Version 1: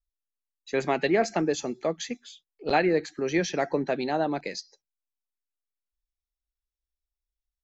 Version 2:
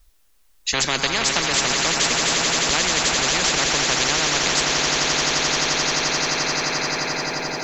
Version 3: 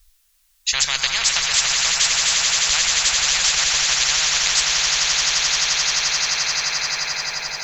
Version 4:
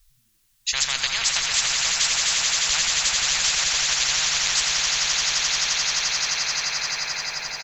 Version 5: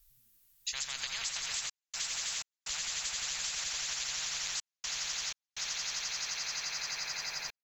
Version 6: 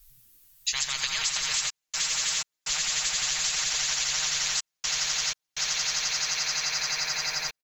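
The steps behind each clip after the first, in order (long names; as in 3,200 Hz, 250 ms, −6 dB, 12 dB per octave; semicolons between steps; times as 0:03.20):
speech leveller 0.5 s; on a send: echo that builds up and dies away 87 ms, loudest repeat 8, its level −15 dB; on the sum: every bin compressed towards the loudest bin 10 to 1; level +5.5 dB
guitar amp tone stack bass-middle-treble 10-0-10; level +4.5 dB
echo with shifted repeats 85 ms, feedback 39%, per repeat +100 Hz, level −9.5 dB; level −4 dB
parametric band 15,000 Hz +13 dB 0.77 octaves; downward compressor, threshold −25 dBFS, peak gain reduction 9.5 dB; gate pattern "xxxxxxx.xx.x" 62 BPM −60 dB; level −8.5 dB
comb filter 6.5 ms, depth 58%; level +7.5 dB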